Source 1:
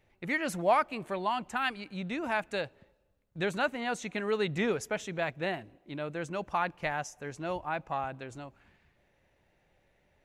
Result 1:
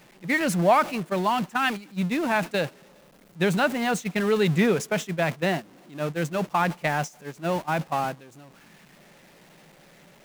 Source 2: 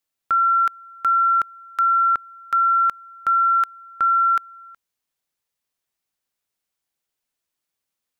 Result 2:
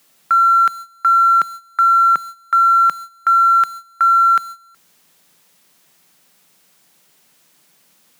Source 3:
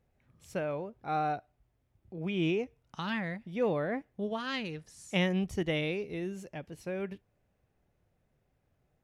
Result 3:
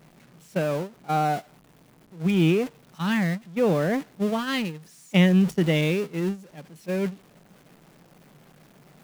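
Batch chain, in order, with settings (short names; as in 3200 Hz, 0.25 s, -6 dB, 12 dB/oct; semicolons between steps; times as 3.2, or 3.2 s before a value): zero-crossing step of -35.5 dBFS; gate -33 dBFS, range -17 dB; resonant low shelf 120 Hz -10 dB, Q 3; gain +5 dB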